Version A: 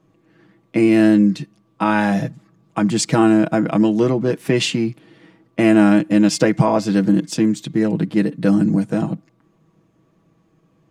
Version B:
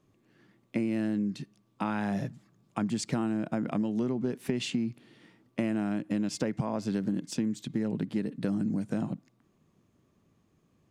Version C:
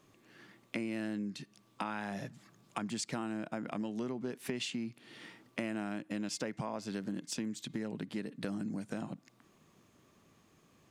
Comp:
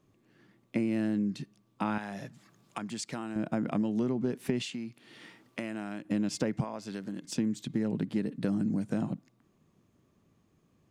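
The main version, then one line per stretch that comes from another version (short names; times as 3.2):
B
1.98–3.36 from C
4.62–6.05 from C
6.64–7.25 from C
not used: A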